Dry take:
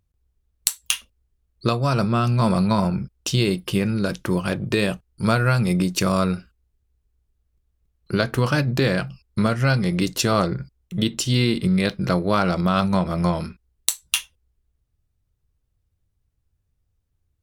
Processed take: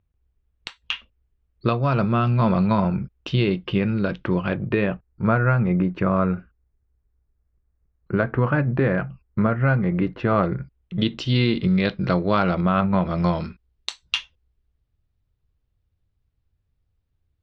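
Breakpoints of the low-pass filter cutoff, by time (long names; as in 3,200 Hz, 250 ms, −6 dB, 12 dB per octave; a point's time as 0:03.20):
low-pass filter 24 dB per octave
0:04.35 3,200 Hz
0:05.09 2,000 Hz
0:10.16 2,000 Hz
0:11.04 3,900 Hz
0:12.36 3,900 Hz
0:12.88 2,300 Hz
0:13.17 4,500 Hz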